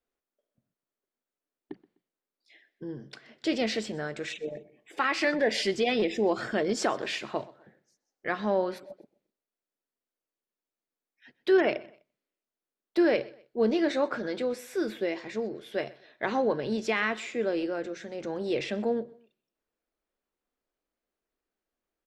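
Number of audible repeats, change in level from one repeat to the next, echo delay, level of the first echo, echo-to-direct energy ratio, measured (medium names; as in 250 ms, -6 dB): 2, -10.0 dB, 126 ms, -21.5 dB, -21.0 dB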